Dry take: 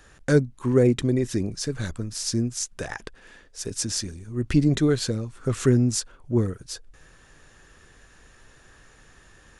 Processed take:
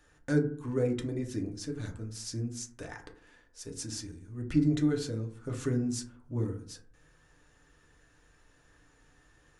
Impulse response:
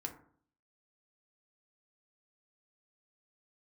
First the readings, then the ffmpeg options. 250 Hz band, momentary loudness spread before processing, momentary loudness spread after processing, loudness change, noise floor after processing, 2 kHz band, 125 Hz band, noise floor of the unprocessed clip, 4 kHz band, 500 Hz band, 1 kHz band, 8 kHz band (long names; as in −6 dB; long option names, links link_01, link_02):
−7.5 dB, 15 LU, 15 LU, −8.5 dB, −64 dBFS, −10.0 dB, −9.0 dB, −54 dBFS, −12.0 dB, −10.0 dB, −9.5 dB, −12.0 dB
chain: -filter_complex "[1:a]atrim=start_sample=2205[link_01];[0:a][link_01]afir=irnorm=-1:irlink=0,volume=-9dB"